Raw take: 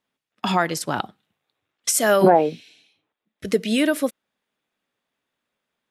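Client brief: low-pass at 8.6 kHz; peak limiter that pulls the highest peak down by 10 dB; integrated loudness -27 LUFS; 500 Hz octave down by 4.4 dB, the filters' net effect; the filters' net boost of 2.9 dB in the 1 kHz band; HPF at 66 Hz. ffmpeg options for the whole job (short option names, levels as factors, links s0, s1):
-af "highpass=66,lowpass=8600,equalizer=f=500:t=o:g=-9,equalizer=f=1000:t=o:g=8,volume=0.944,alimiter=limit=0.168:level=0:latency=1"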